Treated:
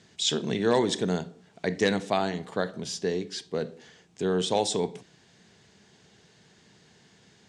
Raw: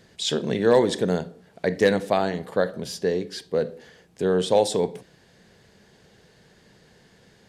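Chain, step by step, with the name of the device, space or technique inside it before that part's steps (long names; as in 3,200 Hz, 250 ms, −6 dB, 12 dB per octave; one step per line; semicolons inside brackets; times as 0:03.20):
car door speaker (loudspeaker in its box 84–7,700 Hz, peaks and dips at 530 Hz −8 dB, 1,700 Hz −3 dB, 4,600 Hz −4 dB)
high-shelf EQ 3,500 Hz +7.5 dB
level −2.5 dB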